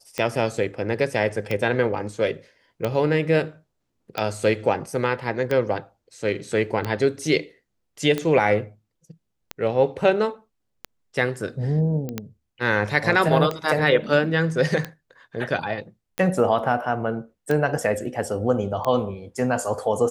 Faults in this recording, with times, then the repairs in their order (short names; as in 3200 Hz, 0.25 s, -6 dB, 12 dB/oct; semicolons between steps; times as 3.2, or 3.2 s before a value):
tick 45 rpm -12 dBFS
12.09 pop -17 dBFS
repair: de-click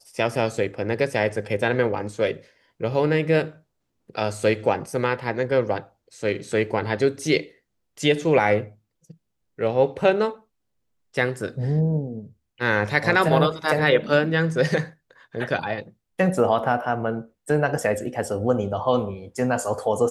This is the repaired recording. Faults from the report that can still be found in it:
none